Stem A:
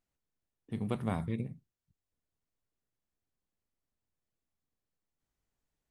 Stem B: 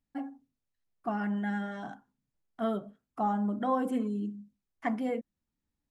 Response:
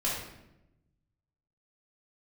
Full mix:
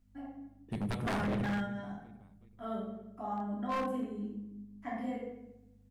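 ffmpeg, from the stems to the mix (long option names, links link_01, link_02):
-filter_complex "[0:a]volume=1dB,asplit=4[link_01][link_02][link_03][link_04];[link_02]volume=-15.5dB[link_05];[link_03]volume=-20.5dB[link_06];[1:a]aeval=exprs='val(0)+0.00158*(sin(2*PI*50*n/s)+sin(2*PI*2*50*n/s)/2+sin(2*PI*3*50*n/s)/3+sin(2*PI*4*50*n/s)/4+sin(2*PI*5*50*n/s)/5)':channel_layout=same,volume=-2dB,asplit=2[link_07][link_08];[link_08]volume=-12dB[link_09];[link_04]apad=whole_len=260556[link_10];[link_07][link_10]sidechaingate=range=-33dB:threshold=-56dB:ratio=16:detection=peak[link_11];[2:a]atrim=start_sample=2205[link_12];[link_05][link_09]amix=inputs=2:normalize=0[link_13];[link_13][link_12]afir=irnorm=-1:irlink=0[link_14];[link_06]aecho=0:1:377|754|1131|1508|1885|2262|2639:1|0.51|0.26|0.133|0.0677|0.0345|0.0176[link_15];[link_01][link_11][link_14][link_15]amix=inputs=4:normalize=0,aeval=exprs='0.0422*(abs(mod(val(0)/0.0422+3,4)-2)-1)':channel_layout=same"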